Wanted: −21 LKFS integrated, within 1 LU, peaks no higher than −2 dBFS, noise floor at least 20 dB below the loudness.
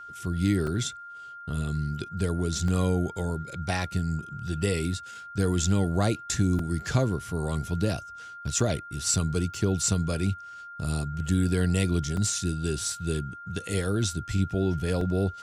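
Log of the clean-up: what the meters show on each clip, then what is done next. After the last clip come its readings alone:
number of dropouts 7; longest dropout 3.0 ms; interfering tone 1,400 Hz; level of the tone −40 dBFS; integrated loudness −28.0 LKFS; sample peak −11.0 dBFS; target loudness −21.0 LKFS
→ repair the gap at 0:00.67/0:02.68/0:06.59/0:08.60/0:09.54/0:12.17/0:15.01, 3 ms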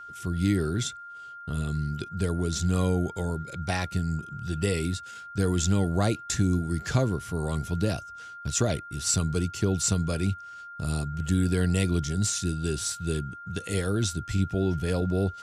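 number of dropouts 0; interfering tone 1,400 Hz; level of the tone −40 dBFS
→ notch filter 1,400 Hz, Q 30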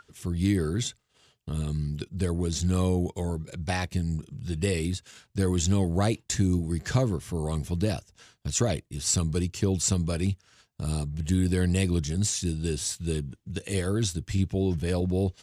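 interfering tone none found; integrated loudness −28.0 LKFS; sample peak −11.5 dBFS; target loudness −21.0 LKFS
→ level +7 dB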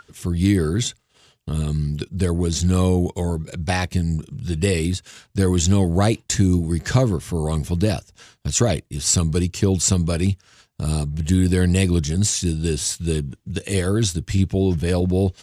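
integrated loudness −21.0 LKFS; sample peak −4.5 dBFS; background noise floor −61 dBFS

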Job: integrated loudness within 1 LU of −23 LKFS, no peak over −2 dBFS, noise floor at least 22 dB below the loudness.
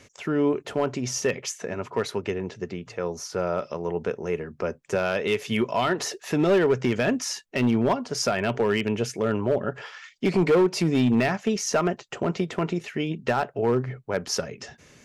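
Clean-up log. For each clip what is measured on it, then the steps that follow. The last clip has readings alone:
share of clipped samples 1.2%; peaks flattened at −15.0 dBFS; integrated loudness −26.0 LKFS; sample peak −15.0 dBFS; target loudness −23.0 LKFS
→ clipped peaks rebuilt −15 dBFS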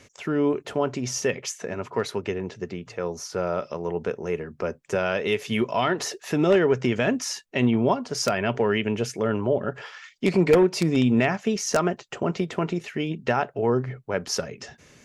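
share of clipped samples 0.0%; integrated loudness −25.0 LKFS; sample peak −6.0 dBFS; target loudness −23.0 LKFS
→ level +2 dB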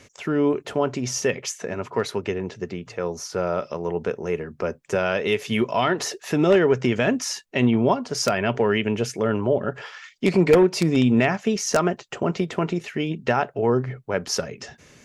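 integrated loudness −23.0 LKFS; sample peak −4.0 dBFS; background noise floor −54 dBFS

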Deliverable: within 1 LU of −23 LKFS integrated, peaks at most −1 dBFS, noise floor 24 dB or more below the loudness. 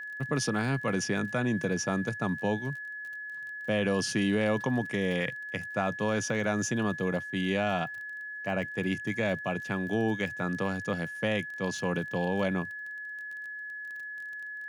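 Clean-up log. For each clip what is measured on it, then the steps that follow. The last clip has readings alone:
crackle rate 24 per second; interfering tone 1,700 Hz; level of the tone −37 dBFS; integrated loudness −31.0 LKFS; sample peak −16.5 dBFS; target loudness −23.0 LKFS
→ click removal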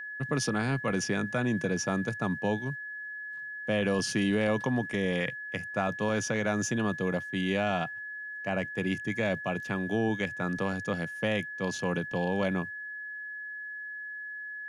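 crackle rate 0 per second; interfering tone 1,700 Hz; level of the tone −37 dBFS
→ notch filter 1,700 Hz, Q 30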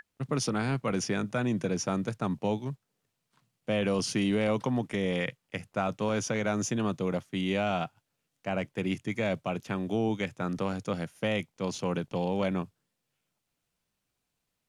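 interfering tone none found; integrated loudness −31.0 LKFS; sample peak −16.5 dBFS; target loudness −23.0 LKFS
→ level +8 dB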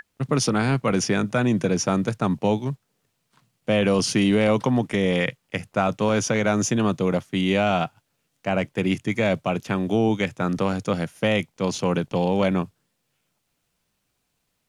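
integrated loudness −23.0 LKFS; sample peak −8.5 dBFS; background noise floor −75 dBFS

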